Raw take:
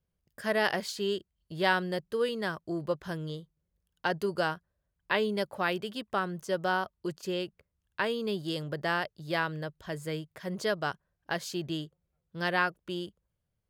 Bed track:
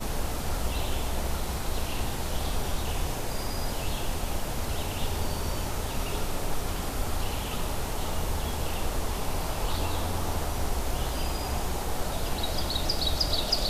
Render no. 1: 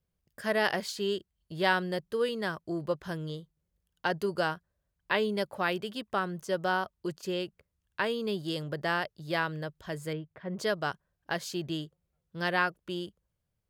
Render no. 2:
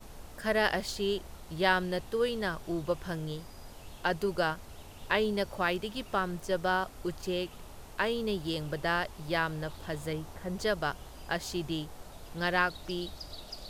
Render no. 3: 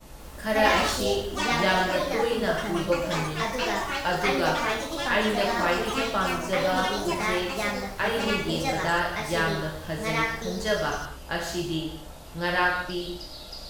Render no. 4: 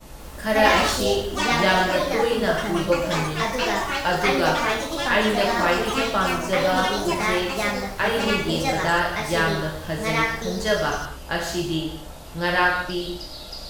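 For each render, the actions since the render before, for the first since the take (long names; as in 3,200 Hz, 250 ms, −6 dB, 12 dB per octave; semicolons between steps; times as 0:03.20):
0:10.13–0:10.59: high-frequency loss of the air 470 metres
mix in bed track −17.5 dB
reverb whose tail is shaped and stops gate 290 ms falling, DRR −3 dB; delay with pitch and tempo change per echo 184 ms, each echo +4 semitones, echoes 3
level +4 dB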